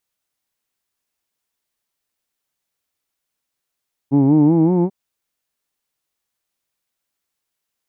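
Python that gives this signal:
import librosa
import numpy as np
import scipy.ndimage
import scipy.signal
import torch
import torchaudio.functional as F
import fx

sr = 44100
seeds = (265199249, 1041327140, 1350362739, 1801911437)

y = fx.vowel(sr, seeds[0], length_s=0.79, word="who'd", hz=133.0, glide_st=6.0, vibrato_hz=5.3, vibrato_st=0.9)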